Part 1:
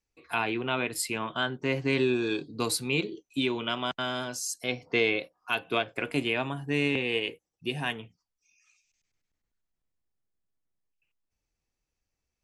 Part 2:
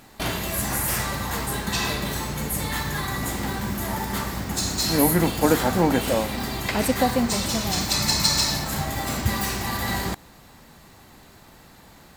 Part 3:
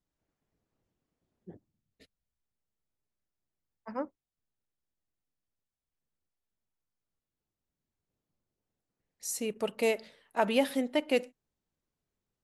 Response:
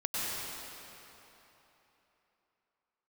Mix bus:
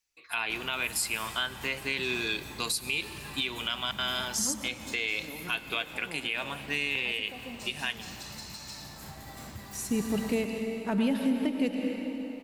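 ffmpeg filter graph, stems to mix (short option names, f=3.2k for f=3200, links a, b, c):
-filter_complex "[0:a]tiltshelf=f=970:g=-9.5,volume=-2dB,asplit=2[a][b];[b]volume=-23dB[c];[1:a]alimiter=limit=-14.5dB:level=0:latency=1:release=455,adelay=300,volume=-18.5dB,asplit=2[d][e];[e]volume=-12.5dB[f];[2:a]asubboost=boost=8.5:cutoff=210,adelay=500,volume=-4.5dB,asplit=2[g][h];[h]volume=-7.5dB[i];[3:a]atrim=start_sample=2205[j];[c][f][i]amix=inputs=3:normalize=0[k];[k][j]afir=irnorm=-1:irlink=0[l];[a][d][g][l]amix=inputs=4:normalize=0,alimiter=limit=-18.5dB:level=0:latency=1:release=198"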